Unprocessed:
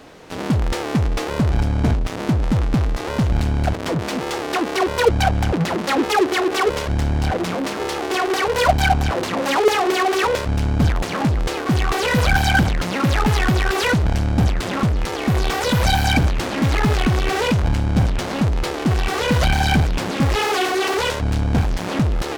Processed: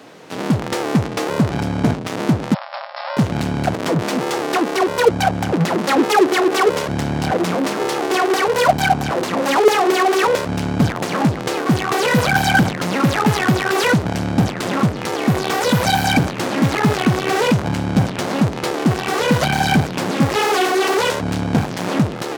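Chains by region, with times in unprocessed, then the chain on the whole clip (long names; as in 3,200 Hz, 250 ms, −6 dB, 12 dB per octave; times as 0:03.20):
0:02.54–0:03.17: linear-phase brick-wall band-pass 530–5,500 Hz + dynamic equaliser 2,700 Hz, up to −5 dB, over −44 dBFS, Q 1.1
whole clip: high-pass filter 120 Hz 24 dB per octave; dynamic equaliser 3,100 Hz, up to −3 dB, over −32 dBFS, Q 0.71; automatic gain control gain up to 3 dB; level +1.5 dB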